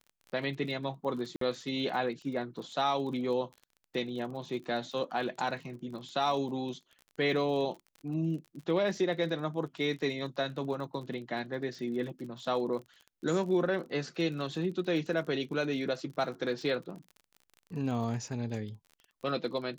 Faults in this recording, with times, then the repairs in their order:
crackle 35/s -41 dBFS
1.36–1.41 gap 53 ms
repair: de-click; interpolate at 1.36, 53 ms

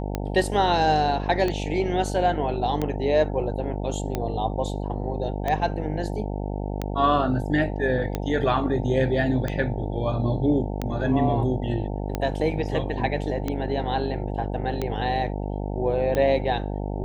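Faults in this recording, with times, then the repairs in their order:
buzz 50 Hz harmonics 18 -29 dBFS
tick 45 rpm -13 dBFS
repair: de-click; de-hum 50 Hz, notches 18

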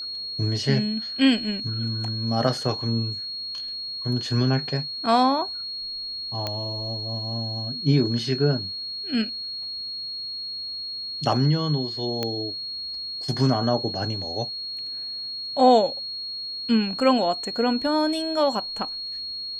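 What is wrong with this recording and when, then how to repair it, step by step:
tone 4300 Hz -30 dBFS
6.47 pop -13 dBFS
12.23 pop -12 dBFS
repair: de-click; notch 4300 Hz, Q 30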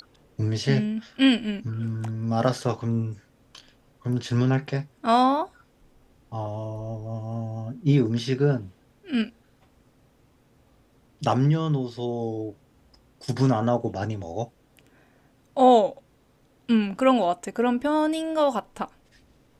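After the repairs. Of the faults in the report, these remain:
none

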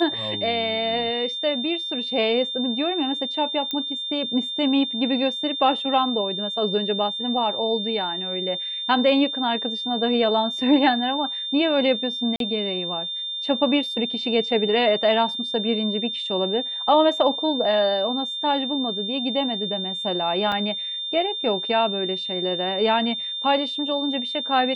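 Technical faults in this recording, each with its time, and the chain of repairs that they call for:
tone 3600 Hz -27 dBFS
3.71 pop -14 dBFS
12.36–12.4 gap 42 ms
20.52 gap 4.1 ms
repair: de-click; notch 3600 Hz, Q 30; interpolate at 12.36, 42 ms; interpolate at 20.52, 4.1 ms

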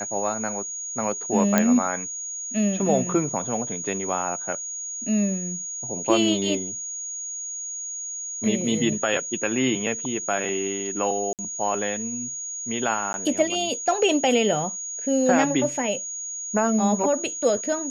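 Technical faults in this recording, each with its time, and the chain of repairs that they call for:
tone 6700 Hz -30 dBFS
1.58 pop -4 dBFS
11.33–11.39 gap 58 ms
13.13–13.14 gap 11 ms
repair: de-click; notch 6700 Hz, Q 30; interpolate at 11.33, 58 ms; interpolate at 13.13, 11 ms

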